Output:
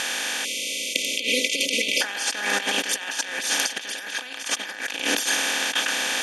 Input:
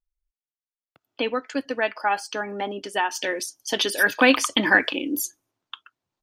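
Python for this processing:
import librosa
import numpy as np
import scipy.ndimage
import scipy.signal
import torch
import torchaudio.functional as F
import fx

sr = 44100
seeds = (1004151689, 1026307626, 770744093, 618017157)

y = fx.bin_compress(x, sr, power=0.2)
y = fx.weighting(y, sr, curve='ITU-R 468')
y = fx.spec_erase(y, sr, start_s=0.45, length_s=1.56, low_hz=640.0, high_hz=2000.0)
y = fx.low_shelf(y, sr, hz=370.0, db=9.5)
y = fx.over_compress(y, sr, threshold_db=-14.0, ratio=-0.5)
y = y * 10.0 ** (-11.0 / 20.0)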